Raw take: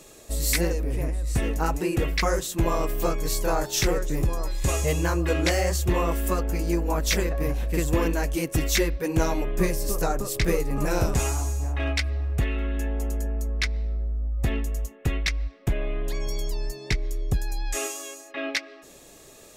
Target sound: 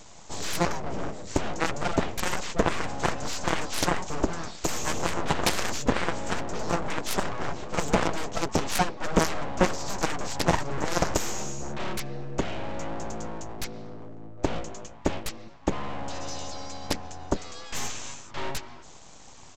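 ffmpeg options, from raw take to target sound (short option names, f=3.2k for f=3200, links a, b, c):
-af "highpass=f=98:w=0.5412,highpass=f=98:w=1.3066,equalizer=f=2k:w=0.59:g=-9.5,aresample=16000,aeval=exprs='abs(val(0))':c=same,aresample=44100,aeval=exprs='0.266*(cos(1*acos(clip(val(0)/0.266,-1,1)))-cos(1*PI/2))+0.0944*(cos(7*acos(clip(val(0)/0.266,-1,1)))-cos(7*PI/2))+0.0119*(cos(8*acos(clip(val(0)/0.266,-1,1)))-cos(8*PI/2))':c=same,volume=3dB"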